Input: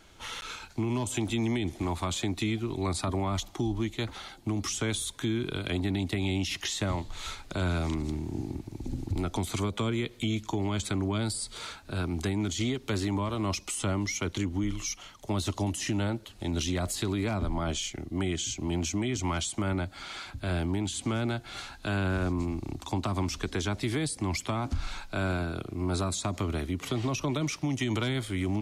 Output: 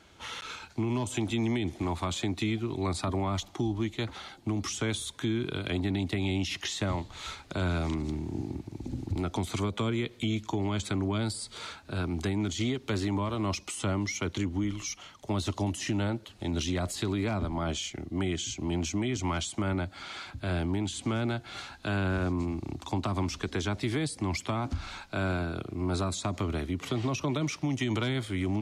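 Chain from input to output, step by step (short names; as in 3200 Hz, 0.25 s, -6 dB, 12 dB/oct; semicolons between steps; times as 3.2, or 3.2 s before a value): HPF 59 Hz; high shelf 9400 Hz -10 dB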